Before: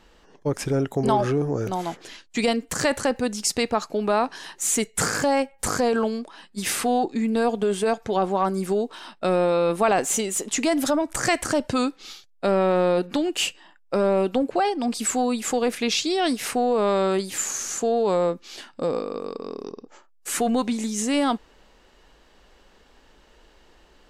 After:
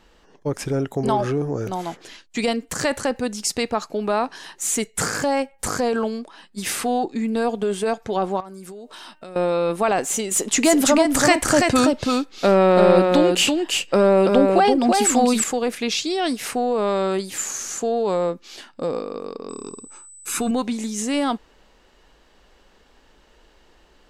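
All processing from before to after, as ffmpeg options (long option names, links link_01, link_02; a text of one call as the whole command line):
ffmpeg -i in.wav -filter_complex "[0:a]asettb=1/sr,asplit=3[link_01][link_02][link_03];[link_01]atrim=end=8.404[link_04];[link_02]atrim=start=8.4:end=9.36,asetpts=PTS-STARTPTS,afade=type=in:duration=0.004:curve=qsin,afade=type=out:start_time=0.956:duration=0.004:curve=qsin,highshelf=frequency=5300:gain=7,bandreject=frequency=305.9:width_type=h:width=4,bandreject=frequency=611.8:width_type=h:width=4,bandreject=frequency=917.7:width_type=h:width=4,bandreject=frequency=1223.6:width_type=h:width=4,bandreject=frequency=1529.5:width_type=h:width=4,bandreject=frequency=1835.4:width_type=h:width=4,bandreject=frequency=2141.3:width_type=h:width=4,bandreject=frequency=2447.2:width_type=h:width=4,bandreject=frequency=2753.1:width_type=h:width=4,bandreject=frequency=3059:width_type=h:width=4,acompressor=threshold=-35dB:ratio=8:attack=3.2:release=140:knee=1:detection=peak[link_05];[link_03]atrim=start=9.356[link_06];[link_04][link_05]acrossfade=duration=0.004:curve1=hsin:curve2=qsin[link_07];[link_07][link_06]acrossfade=duration=0.004:curve1=qsin:curve2=hsin,asettb=1/sr,asplit=3[link_08][link_09][link_10];[link_08]atrim=end=10.314[link_11];[link_09]atrim=start=10.31:end=15.44,asetpts=PTS-STARTPTS,afade=type=in:duration=0.004:curve=qsin,afade=type=out:start_time=5.126:duration=0.004:curve=qsin,acontrast=42,aecho=1:1:332:0.668,atrim=end_sample=226233[link_12];[link_10]atrim=start=15.436[link_13];[link_11][link_12]acrossfade=duration=0.004:curve1=hsin:curve2=qsin[link_14];[link_14][link_13]acrossfade=duration=0.004:curve1=qsin:curve2=hsin,asettb=1/sr,asplit=3[link_15][link_16][link_17];[link_15]atrim=end=19.494[link_18];[link_16]atrim=start=19.49:end=20.51,asetpts=PTS-STARTPTS,afade=type=in:duration=0.004:curve=qsin,afade=type=out:start_time=1.016:duration=0.004:curve=qsin,aeval=exprs='val(0)+0.01*sin(2*PI*8000*n/s)':channel_layout=same,aecho=1:1:0.8:0.59,atrim=end_sample=44982[link_19];[link_17]atrim=start=20.506[link_20];[link_18][link_19]acrossfade=duration=0.004:curve1=hsin:curve2=qsin[link_21];[link_21][link_20]acrossfade=duration=0.004:curve1=qsin:curve2=hsin" out.wav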